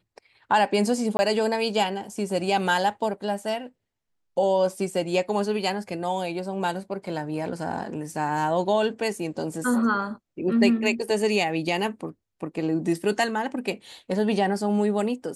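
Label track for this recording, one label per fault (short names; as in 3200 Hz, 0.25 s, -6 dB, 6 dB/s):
1.170000	1.190000	gap 20 ms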